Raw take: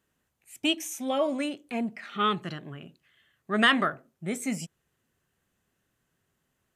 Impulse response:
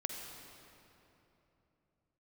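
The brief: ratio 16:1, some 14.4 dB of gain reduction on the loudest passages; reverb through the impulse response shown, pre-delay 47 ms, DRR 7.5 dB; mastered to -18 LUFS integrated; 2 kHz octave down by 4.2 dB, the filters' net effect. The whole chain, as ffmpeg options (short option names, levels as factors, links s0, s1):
-filter_complex "[0:a]equalizer=f=2000:t=o:g=-5,acompressor=threshold=0.0178:ratio=16,asplit=2[s0][s1];[1:a]atrim=start_sample=2205,adelay=47[s2];[s1][s2]afir=irnorm=-1:irlink=0,volume=0.376[s3];[s0][s3]amix=inputs=2:normalize=0,volume=12.6"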